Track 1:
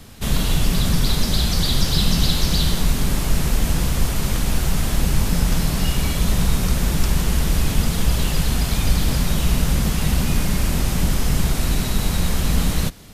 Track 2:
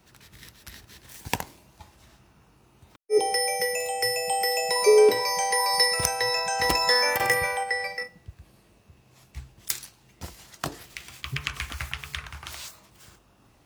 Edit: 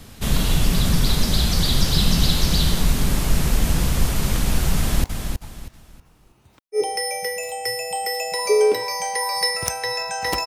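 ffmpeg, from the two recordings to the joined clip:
-filter_complex "[0:a]apad=whole_dur=10.46,atrim=end=10.46,atrim=end=5.042[s0];[1:a]atrim=start=1.408:end=6.83[s1];[s0][s1]acrossfade=d=0.004:c1=hsin:c2=hsin,asplit=2[s2][s3];[s3]afade=t=in:st=4.77:d=0.01,afade=t=out:st=5.04:d=0.01,aecho=0:1:320|640|960|1280:0.473151|0.141945|0.0425836|0.0127751[s4];[s2][s4]amix=inputs=2:normalize=0"

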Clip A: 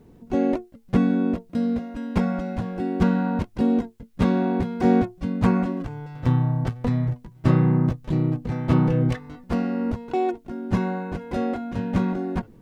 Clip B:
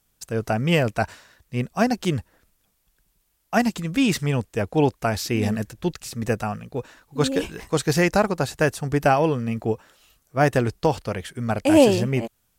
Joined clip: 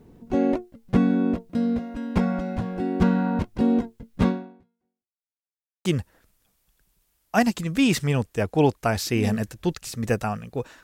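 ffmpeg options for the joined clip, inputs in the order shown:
-filter_complex "[0:a]apad=whole_dur=10.83,atrim=end=10.83,asplit=2[s0][s1];[s0]atrim=end=5.25,asetpts=PTS-STARTPTS,afade=t=out:st=4.27:d=0.98:c=exp[s2];[s1]atrim=start=5.25:end=5.85,asetpts=PTS-STARTPTS,volume=0[s3];[1:a]atrim=start=2.04:end=7.02,asetpts=PTS-STARTPTS,afade=t=in:d=0.004:c=hsin[s4];[s2][s3][s4]concat=n=3:v=0:a=1"

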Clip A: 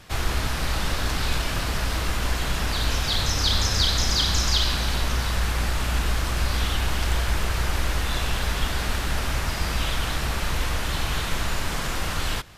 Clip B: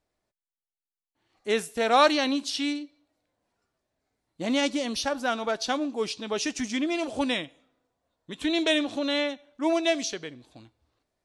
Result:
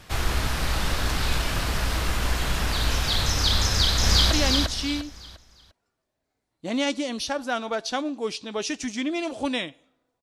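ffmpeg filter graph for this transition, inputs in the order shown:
-filter_complex "[0:a]apad=whole_dur=10.22,atrim=end=10.22,atrim=end=4.312[s0];[1:a]atrim=start=2.068:end=7.98[s1];[s0][s1]acrossfade=d=0.004:c1=hsin:c2=hsin,asplit=2[s2][s3];[s3]afade=t=in:st=3.68:d=0.01,afade=t=out:st=4.31:d=0.01,aecho=0:1:350|700|1050|1400:0.841395|0.252419|0.0757256|0.0227177[s4];[s2][s4]amix=inputs=2:normalize=0"

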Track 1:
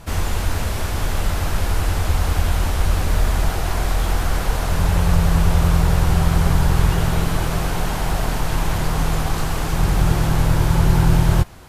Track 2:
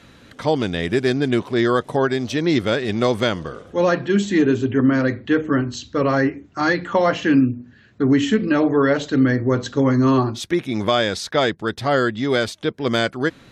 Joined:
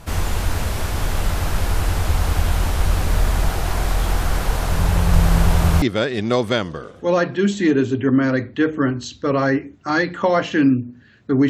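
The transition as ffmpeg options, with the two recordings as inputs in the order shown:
-filter_complex "[0:a]asettb=1/sr,asplit=3[s0][s1][s2];[s0]atrim=end=4.104[s3];[s1]atrim=start=4.1:end=5.82,asetpts=PTS-STARTPTS,afade=t=in:d=0.004:c=qsin,afade=t=out:st=1.716:d=0.004:c=qsin,aecho=1:1:1031:0.631,atrim=end_sample=75852[s4];[s2]atrim=start=5.816[s5];[s3][s4]acrossfade=d=0.004:c1=hsin:c2=qsin[s6];[s6][s5]acrossfade=d=0.004:c1=qsin:c2=hsin,apad=whole_dur=11.49,atrim=end=11.49,atrim=end=5.822[s7];[1:a]atrim=start=2.528:end=8.2[s8];[s7][s8]acrossfade=d=0.004:c1=hsin:c2=hsin"

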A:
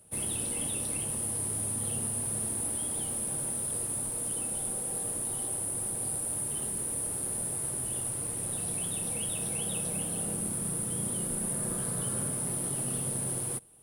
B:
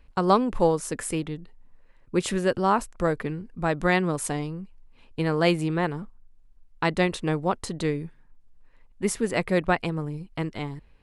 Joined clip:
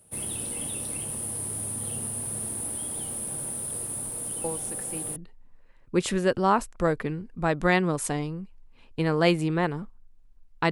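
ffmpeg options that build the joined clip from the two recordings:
-filter_complex "[1:a]asplit=2[s0][s1];[0:a]apad=whole_dur=10.71,atrim=end=10.71,atrim=end=5.162[s2];[s1]atrim=start=1.358:end=6.91[s3];[s0]atrim=start=0.64:end=1.36,asetpts=PTS-STARTPTS,volume=0.266,afade=t=in:d=0.004:c=hsin,afade=t=out:st=0.716:d=0.004:c=hsin,adelay=4440[s4];[s2][s3]acrossfade=d=0.004:c1=hsin:c2=hsin[s5];[s5][s4]amix=inputs=2:normalize=0"

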